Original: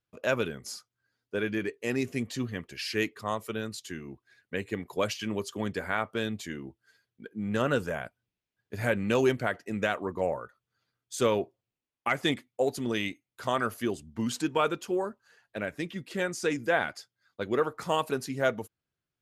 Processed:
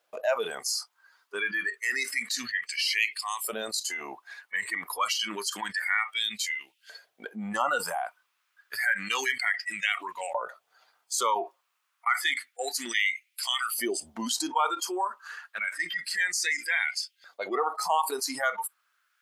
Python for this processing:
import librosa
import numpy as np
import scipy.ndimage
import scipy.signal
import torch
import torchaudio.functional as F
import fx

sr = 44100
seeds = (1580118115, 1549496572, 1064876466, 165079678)

y = fx.noise_reduce_blind(x, sr, reduce_db=20)
y = fx.filter_lfo_highpass(y, sr, shape='saw_up', hz=0.29, low_hz=600.0, high_hz=2900.0, q=3.7)
y = fx.env_flatten(y, sr, amount_pct=70)
y = y * librosa.db_to_amplitude(-5.5)